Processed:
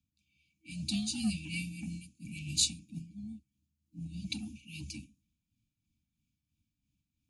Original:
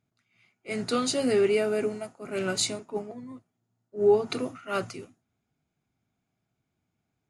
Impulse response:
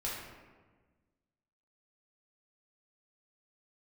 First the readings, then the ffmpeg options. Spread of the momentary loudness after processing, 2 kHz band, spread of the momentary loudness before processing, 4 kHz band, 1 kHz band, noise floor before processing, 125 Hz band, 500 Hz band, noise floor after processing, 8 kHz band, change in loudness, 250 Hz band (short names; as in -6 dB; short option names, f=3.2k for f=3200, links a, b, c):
17 LU, -9.0 dB, 18 LU, -1.5 dB, under -25 dB, -81 dBFS, +1.0 dB, under -40 dB, under -85 dBFS, -1.5 dB, -9.0 dB, -5.5 dB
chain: -filter_complex "[0:a]afftfilt=real='re*(1-between(b*sr/4096,360,2300))':imag='im*(1-between(b*sr/4096,360,2300))':win_size=4096:overlap=0.75,adynamicequalizer=threshold=0.00631:dfrequency=190:dqfactor=3.1:tfrequency=190:tqfactor=3.1:attack=5:release=100:ratio=0.375:range=1.5:mode=cutabove:tftype=bell,acrossover=split=270|2300[a][b][c];[b]asoftclip=type=tanh:threshold=-39.5dB[d];[a][d][c]amix=inputs=3:normalize=0,afreqshift=-39,tremolo=f=3:d=0.54"